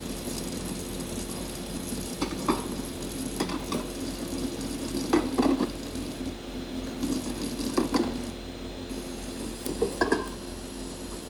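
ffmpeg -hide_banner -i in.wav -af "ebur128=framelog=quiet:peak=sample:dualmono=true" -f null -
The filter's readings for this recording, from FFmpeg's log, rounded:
Integrated loudness:
  I:         -28.3 LUFS
  Threshold: -38.3 LUFS
Loudness range:
  LRA:         2.7 LU
  Threshold: -48.0 LUFS
  LRA low:   -29.4 LUFS
  LRA high:  -26.7 LUFS
Sample peak:
  Peak:       -9.1 dBFS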